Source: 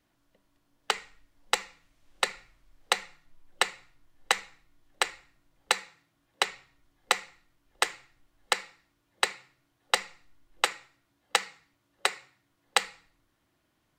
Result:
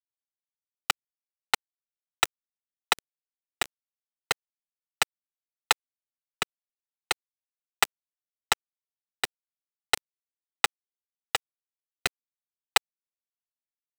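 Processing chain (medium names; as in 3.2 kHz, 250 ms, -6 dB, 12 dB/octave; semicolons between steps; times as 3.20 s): rattle on loud lows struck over -52 dBFS, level -18 dBFS; comb of notches 550 Hz; vibrato 0.75 Hz 28 cents; small samples zeroed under -21 dBFS; rotary cabinet horn 7.5 Hz; trim +4.5 dB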